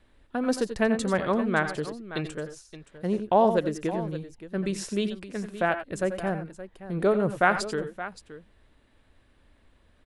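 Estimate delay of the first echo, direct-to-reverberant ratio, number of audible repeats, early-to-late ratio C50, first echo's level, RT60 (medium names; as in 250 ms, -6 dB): 85 ms, no reverb, 2, no reverb, -13.0 dB, no reverb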